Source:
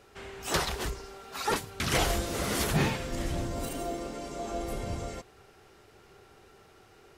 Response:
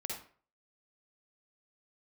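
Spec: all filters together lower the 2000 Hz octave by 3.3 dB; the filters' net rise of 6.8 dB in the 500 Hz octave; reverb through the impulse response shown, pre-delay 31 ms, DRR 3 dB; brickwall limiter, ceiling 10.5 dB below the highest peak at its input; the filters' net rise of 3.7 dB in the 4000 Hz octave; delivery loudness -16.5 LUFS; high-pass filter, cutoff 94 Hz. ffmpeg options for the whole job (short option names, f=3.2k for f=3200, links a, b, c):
-filter_complex "[0:a]highpass=94,equalizer=f=500:t=o:g=9,equalizer=f=2k:t=o:g=-6.5,equalizer=f=4k:t=o:g=6.5,alimiter=limit=-20dB:level=0:latency=1,asplit=2[a][b];[1:a]atrim=start_sample=2205,adelay=31[c];[b][c]afir=irnorm=-1:irlink=0,volume=-3.5dB[d];[a][d]amix=inputs=2:normalize=0,volume=13dB"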